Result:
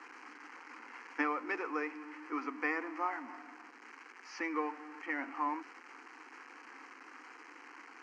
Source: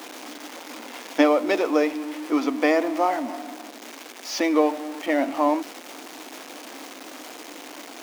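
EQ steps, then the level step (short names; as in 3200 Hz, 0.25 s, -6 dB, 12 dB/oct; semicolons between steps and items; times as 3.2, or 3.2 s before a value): BPF 490–4100 Hz; air absorption 70 m; fixed phaser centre 1500 Hz, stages 4; -5.5 dB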